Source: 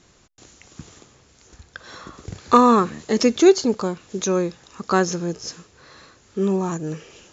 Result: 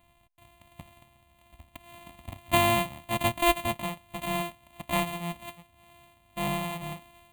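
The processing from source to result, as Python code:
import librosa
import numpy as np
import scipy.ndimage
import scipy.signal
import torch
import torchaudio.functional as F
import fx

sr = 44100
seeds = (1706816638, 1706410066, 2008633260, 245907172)

y = np.r_[np.sort(x[:len(x) // 128 * 128].reshape(-1, 128), axis=1).ravel(), x[len(x) // 128 * 128:]]
y = fx.fixed_phaser(y, sr, hz=1500.0, stages=6)
y = y * 10.0 ** (-4.5 / 20.0)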